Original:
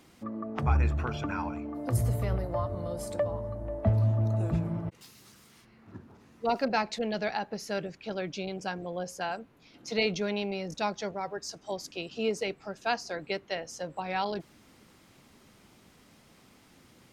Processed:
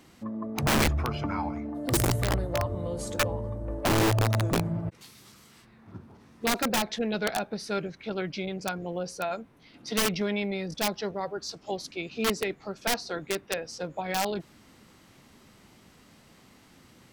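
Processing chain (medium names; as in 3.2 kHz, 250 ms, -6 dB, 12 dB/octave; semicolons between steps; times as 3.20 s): integer overflow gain 21 dB; formant shift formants -2 st; trim +2.5 dB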